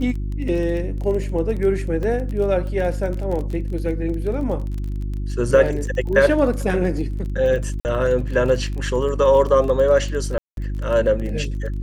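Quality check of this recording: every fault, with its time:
crackle 24 per s -28 dBFS
hum 50 Hz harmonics 7 -25 dBFS
2.03 s: dropout 2.2 ms
7.80–7.85 s: dropout 49 ms
10.38–10.57 s: dropout 192 ms

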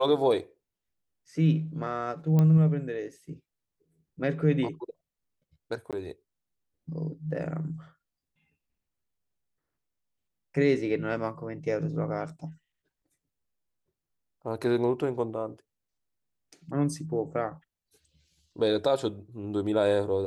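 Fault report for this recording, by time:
2.39 s: pop -15 dBFS
5.91–5.93 s: dropout 17 ms

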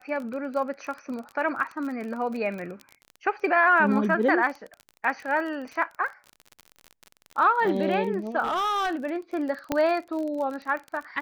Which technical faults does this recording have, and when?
crackle 32 per s -32 dBFS
8.43–8.95 s: clipped -23 dBFS
9.72 s: pop -11 dBFS

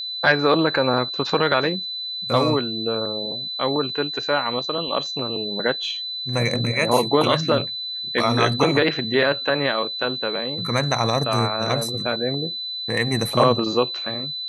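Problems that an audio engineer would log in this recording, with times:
whine 4 kHz -27 dBFS

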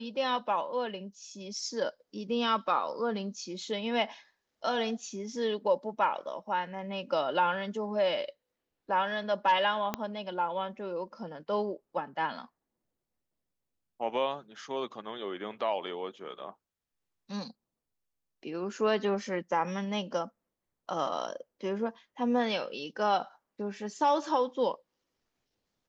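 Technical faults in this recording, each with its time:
9.94 s: pop -15 dBFS

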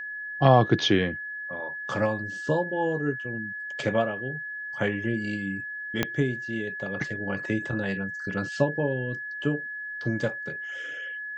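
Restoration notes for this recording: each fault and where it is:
whine 1.7 kHz -33 dBFS
6.03 s: pop -9 dBFS

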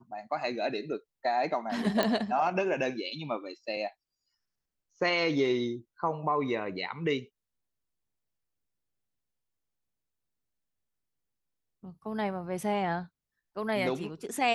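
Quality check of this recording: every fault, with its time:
2.03 s: pop -13 dBFS

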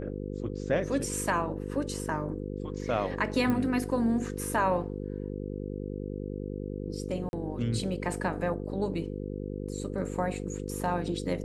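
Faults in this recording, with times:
buzz 50 Hz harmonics 10 -36 dBFS
3.50 s: pop -18 dBFS
7.29–7.33 s: dropout 41 ms

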